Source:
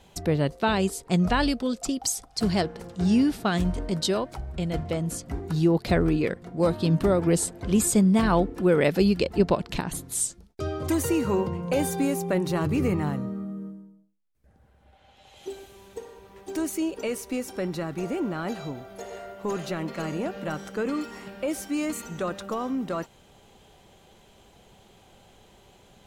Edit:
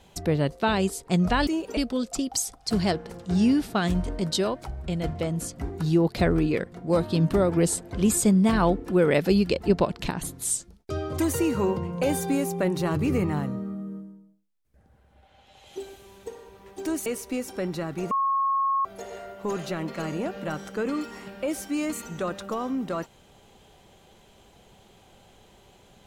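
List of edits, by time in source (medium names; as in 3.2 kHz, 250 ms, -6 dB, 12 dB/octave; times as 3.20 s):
16.76–17.06 s: move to 1.47 s
18.11–18.85 s: bleep 1.09 kHz -21 dBFS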